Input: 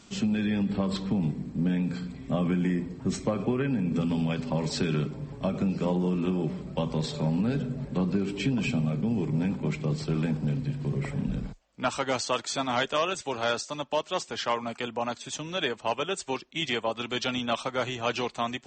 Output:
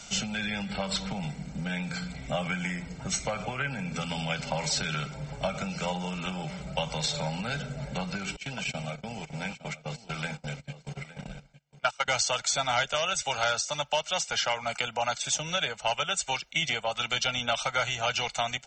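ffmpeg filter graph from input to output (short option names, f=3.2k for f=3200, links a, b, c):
-filter_complex "[0:a]asettb=1/sr,asplit=3[a][b][c];[a]atrim=end=8.364[d];[b]atrim=start=8.36:end=12.08,asetpts=PTS-STARTPTS,afade=t=in:d=0.004:c=qsin,afade=t=out:st=3.716:d=0.004:c=qsin,agate=range=-25dB:threshold=-29dB:ratio=16:release=100:detection=peak,lowshelf=f=410:g=-11.5,aecho=1:1:860:0.133,atrim=end_sample=164052[e];[c]atrim=start=12.076[f];[d][e]acrossfade=d=0.004:c1=hsin:c2=qsin[g];[g][f]acrossfade=d=0.004:c1=qsin:c2=hsin,equalizer=f=100:t=o:w=0.67:g=-10,equalizer=f=250:t=o:w=0.67:g=-9,equalizer=f=2.5k:t=o:w=0.67:g=4,equalizer=f=6.3k:t=o:w=0.67:g=6,acrossover=split=150|830[h][i][j];[h]acompressor=threshold=-49dB:ratio=4[k];[i]acompressor=threshold=-44dB:ratio=4[l];[j]acompressor=threshold=-33dB:ratio=4[m];[k][l][m]amix=inputs=3:normalize=0,aecho=1:1:1.4:0.68,volume=5.5dB"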